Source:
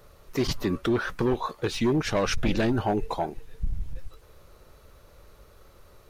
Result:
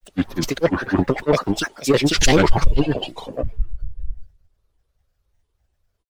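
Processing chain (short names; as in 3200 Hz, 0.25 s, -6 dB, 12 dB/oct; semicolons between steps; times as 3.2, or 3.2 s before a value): grains, spray 0.34 s, pitch spread up and down by 7 st; spectral gain 2.73–3.1, 2500–5100 Hz +10 dB; three-band expander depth 100%; gain +8 dB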